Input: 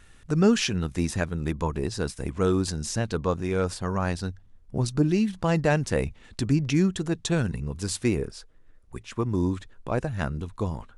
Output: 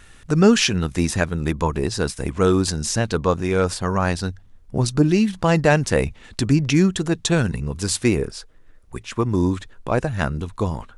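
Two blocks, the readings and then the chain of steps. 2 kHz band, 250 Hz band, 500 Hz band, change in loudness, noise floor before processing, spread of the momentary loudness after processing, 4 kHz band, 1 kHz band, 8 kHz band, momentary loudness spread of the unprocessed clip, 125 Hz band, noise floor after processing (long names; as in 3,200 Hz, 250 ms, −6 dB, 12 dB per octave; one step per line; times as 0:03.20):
+8.0 dB, +5.5 dB, +6.5 dB, +6.0 dB, −53 dBFS, 10 LU, +8.0 dB, +7.5 dB, +8.0 dB, 10 LU, +5.0 dB, −48 dBFS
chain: low-shelf EQ 480 Hz −3 dB
level +8 dB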